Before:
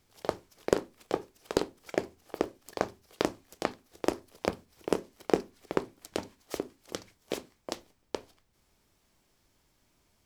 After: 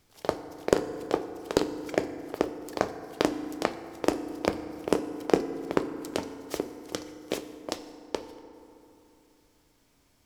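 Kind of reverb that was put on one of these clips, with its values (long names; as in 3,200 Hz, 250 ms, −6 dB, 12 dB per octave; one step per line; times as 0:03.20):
feedback delay network reverb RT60 2.9 s, low-frequency decay 1.2×, high-frequency decay 0.45×, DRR 9.5 dB
level +3 dB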